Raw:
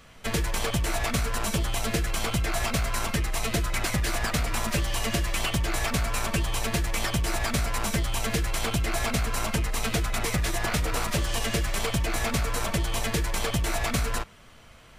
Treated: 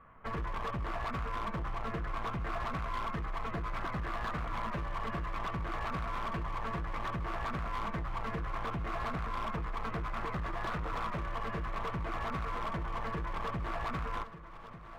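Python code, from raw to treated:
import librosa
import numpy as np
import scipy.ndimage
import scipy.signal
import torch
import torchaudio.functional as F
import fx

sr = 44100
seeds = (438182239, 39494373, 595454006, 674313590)

p1 = scipy.signal.sosfilt(scipy.signal.butter(4, 1900.0, 'lowpass', fs=sr, output='sos'), x)
p2 = fx.peak_eq(p1, sr, hz=1100.0, db=12.5, octaves=0.43)
p3 = np.clip(p2, -10.0 ** (-24.5 / 20.0), 10.0 ** (-24.5 / 20.0))
p4 = p3 + fx.echo_feedback(p3, sr, ms=1194, feedback_pct=58, wet_db=-14.5, dry=0)
y = p4 * 10.0 ** (-8.0 / 20.0)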